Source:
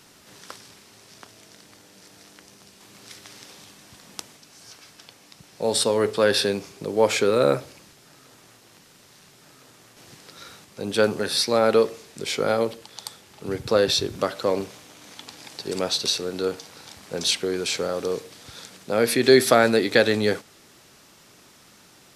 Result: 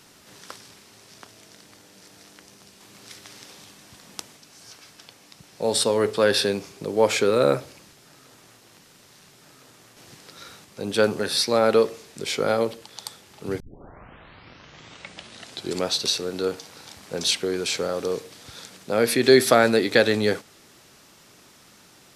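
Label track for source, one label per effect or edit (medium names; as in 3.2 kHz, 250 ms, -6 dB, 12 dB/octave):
13.600000	13.600000	tape start 2.26 s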